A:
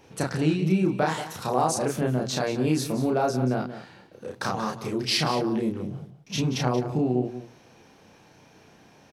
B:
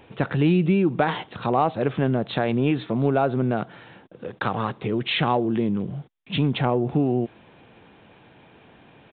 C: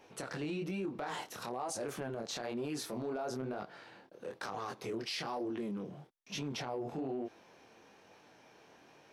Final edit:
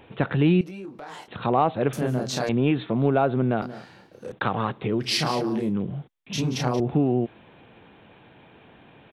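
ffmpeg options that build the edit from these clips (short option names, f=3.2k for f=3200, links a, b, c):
-filter_complex "[0:a]asplit=4[a][b][c][d];[1:a]asplit=6[e][f][g][h][i][j];[e]atrim=end=0.612[k];[2:a]atrim=start=0.608:end=1.282[l];[f]atrim=start=1.278:end=1.932[m];[a]atrim=start=1.928:end=2.492[n];[g]atrim=start=2.488:end=3.622[o];[b]atrim=start=3.618:end=4.322[p];[h]atrim=start=4.318:end=5.13[q];[c]atrim=start=4.97:end=5.76[r];[i]atrim=start=5.6:end=6.332[s];[d]atrim=start=6.328:end=6.802[t];[j]atrim=start=6.798[u];[k][l]acrossfade=d=0.004:c1=hsin:c2=hsin[v];[v][m]acrossfade=d=0.004:c1=hsin:c2=hsin[w];[w][n]acrossfade=d=0.004:c1=hsin:c2=hsin[x];[x][o]acrossfade=d=0.004:c1=hsin:c2=hsin[y];[y][p]acrossfade=d=0.004:c1=hsin:c2=hsin[z];[z][q]acrossfade=d=0.004:c1=hsin:c2=hsin[aa];[aa][r]acrossfade=d=0.16:c1=tri:c2=tri[ab];[ab][s]acrossfade=d=0.16:c1=tri:c2=tri[ac];[ac][t]acrossfade=d=0.004:c1=hsin:c2=hsin[ad];[ad][u]acrossfade=d=0.004:c1=hsin:c2=hsin"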